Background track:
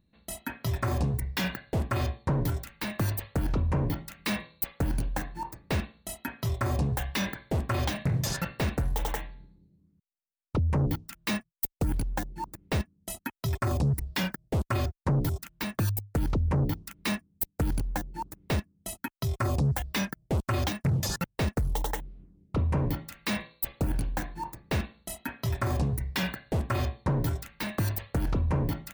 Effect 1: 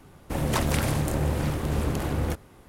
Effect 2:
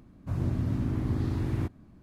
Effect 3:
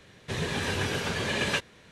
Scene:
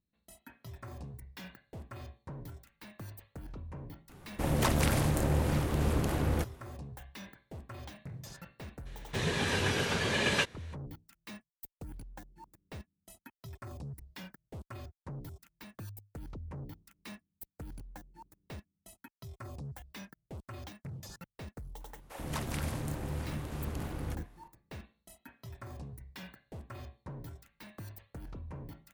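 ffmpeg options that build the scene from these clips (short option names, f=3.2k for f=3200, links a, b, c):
-filter_complex "[1:a]asplit=2[a][b];[0:a]volume=-17.5dB[c];[b]acrossover=split=470[d][e];[d]adelay=90[f];[f][e]amix=inputs=2:normalize=0[g];[a]atrim=end=2.68,asetpts=PTS-STARTPTS,volume=-3dB,afade=t=in:d=0.004:c=hsin,afade=t=out:st=2.676:d=0.004:c=hsin,adelay=180369S[h];[3:a]atrim=end=1.91,asetpts=PTS-STARTPTS,volume=-1dB,afade=t=in:d=0.02,afade=t=out:st=1.89:d=0.02,adelay=8850[i];[g]atrim=end=2.68,asetpts=PTS-STARTPTS,volume=-11dB,afade=t=in:d=0.004:c=hsin,afade=t=out:st=2.676:d=0.004:c=hsin,adelay=961380S[j];[c][h][i][j]amix=inputs=4:normalize=0"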